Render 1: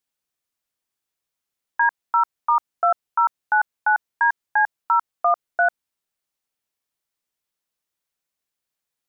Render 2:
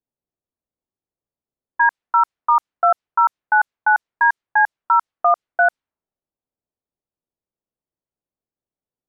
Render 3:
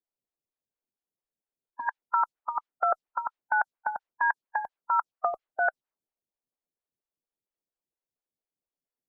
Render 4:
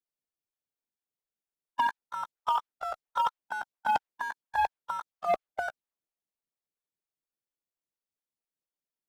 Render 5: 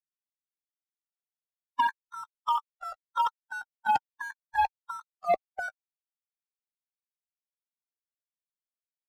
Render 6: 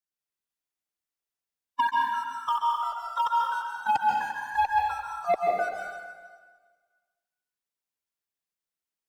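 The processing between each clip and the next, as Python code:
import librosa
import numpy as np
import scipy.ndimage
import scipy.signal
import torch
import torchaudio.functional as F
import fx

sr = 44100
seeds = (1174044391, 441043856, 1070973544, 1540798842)

y1 = fx.env_lowpass(x, sr, base_hz=580.0, full_db=-14.5)
y1 = F.gain(torch.from_numpy(y1), 3.5).numpy()
y2 = fx.hpss(y1, sr, part='harmonic', gain_db=-10)
y2 = fx.stagger_phaser(y2, sr, hz=4.3)
y3 = fx.over_compress(y2, sr, threshold_db=-31.0, ratio=-0.5)
y3 = fx.leveller(y3, sr, passes=3)
y3 = F.gain(torch.from_numpy(y3), -5.0).numpy()
y4 = fx.bin_expand(y3, sr, power=2.0)
y4 = F.gain(torch.from_numpy(y4), 3.5).numpy()
y5 = fx.rev_plate(y4, sr, seeds[0], rt60_s=1.5, hf_ratio=0.95, predelay_ms=120, drr_db=-2.0)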